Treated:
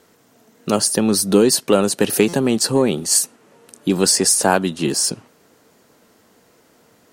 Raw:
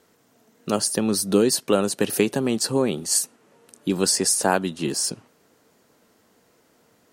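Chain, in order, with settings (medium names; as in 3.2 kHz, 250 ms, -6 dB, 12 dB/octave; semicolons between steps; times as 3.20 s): in parallel at -6 dB: saturation -15.5 dBFS, distortion -12 dB; on the sum: buffer glitch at 2.28 s, samples 256, times 8; trim +2.5 dB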